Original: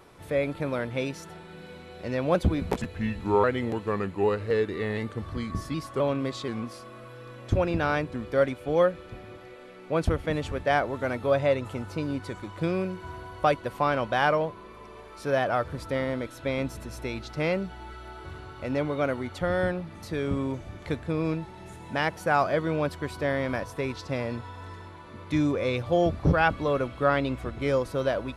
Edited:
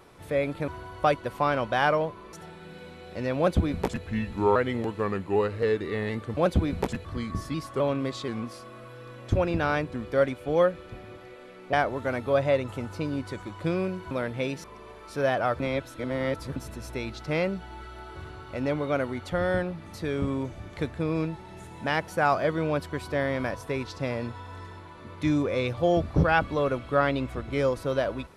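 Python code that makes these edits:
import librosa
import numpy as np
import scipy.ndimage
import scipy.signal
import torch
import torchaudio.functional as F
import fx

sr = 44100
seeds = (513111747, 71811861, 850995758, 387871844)

y = fx.edit(x, sr, fx.swap(start_s=0.68, length_s=0.53, other_s=13.08, other_length_s=1.65),
    fx.duplicate(start_s=2.26, length_s=0.68, to_s=5.25),
    fx.cut(start_s=9.93, length_s=0.77),
    fx.reverse_span(start_s=15.69, length_s=0.96), tone=tone)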